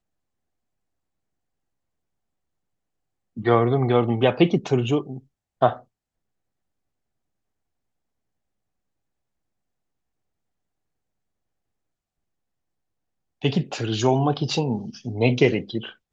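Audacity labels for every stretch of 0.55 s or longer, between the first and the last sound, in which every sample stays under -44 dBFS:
5.820000	13.420000	silence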